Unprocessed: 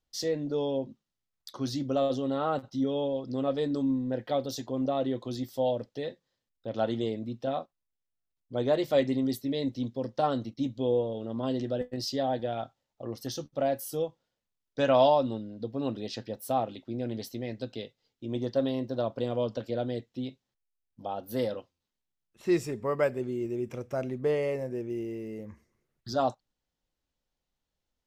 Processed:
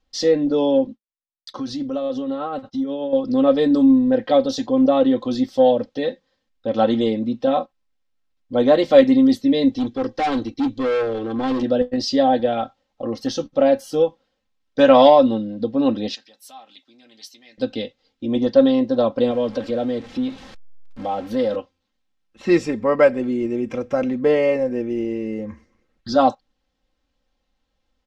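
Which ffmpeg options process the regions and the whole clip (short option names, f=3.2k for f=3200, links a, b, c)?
-filter_complex "[0:a]asettb=1/sr,asplit=3[a][b][c];[a]atrim=end=0.874[d];[b]atrim=start=0.87:end=3.13,asetpts=PTS-STARTPTS,afade=t=in:d=0.004:c=qsin,afade=t=out:st=2.256:d=0.004:c=qsin,agate=range=-33dB:threshold=-49dB:ratio=3:release=100:detection=peak,acompressor=threshold=-36dB:ratio=3:attack=3.2:release=140:knee=1:detection=peak,tremolo=f=8.3:d=0.32[e];[c]atrim=start=3.126[f];[d][e]acrossfade=d=0.004:c1=hsin:c2=qsin[g];[g][f]acrossfade=d=0.004:c1=qsin:c2=hsin,asettb=1/sr,asplit=3[h][i][j];[h]atrim=end=9.724[k];[i]atrim=start=9.72:end=11.63,asetpts=PTS-STARTPTS,afade=t=in:d=0.004:c=qsin,afade=t=out:st=1.906:d=0.004:c=qsin,aecho=1:1:2.6:0.63,atrim=end_sample=84231,volume=31.5dB,asoftclip=hard,volume=-31.5dB[l];[j]atrim=start=11.626[m];[k][l]acrossfade=d=0.004:c1=hsin:c2=qsin[n];[n][m]acrossfade=d=0.004:c1=qsin:c2=hsin,asettb=1/sr,asplit=3[o][p][q];[o]atrim=end=16.154[r];[p]atrim=start=16.15:end=17.58,asetpts=PTS-STARTPTS,afade=t=in:d=0.004:c=qsin,afade=t=out:st=1.426:d=0.004:c=qsin,acompressor=threshold=-35dB:ratio=2:attack=3.2:release=140:knee=1:detection=peak,aderivative,bandreject=f=510:w=5.9[s];[q]atrim=start=17.576[t];[r][s]acrossfade=d=0.004:c1=hsin:c2=qsin[u];[u][t]acrossfade=d=0.004:c1=qsin:c2=hsin,asettb=1/sr,asplit=3[v][w][x];[v]atrim=end=19.314[y];[w]atrim=start=19.31:end=21.56,asetpts=PTS-STARTPTS,afade=t=in:d=0.004:c=qsin,afade=t=out:st=2.246:d=0.004:c=qsin,aeval=exprs='val(0)+0.5*0.00562*sgn(val(0))':c=same,highshelf=f=6.1k:g=-4.5,acompressor=threshold=-38dB:ratio=1.5:attack=3.2:release=140:knee=1:detection=peak[z];[x]atrim=start=21.556[aa];[y][z]acrossfade=d=0.004:c1=hsin:c2=qsin[ab];[ab][aa]acrossfade=d=0.004:c1=qsin:c2=hsin,lowpass=4.7k,aecho=1:1:3.8:0.69,acontrast=63,volume=4dB"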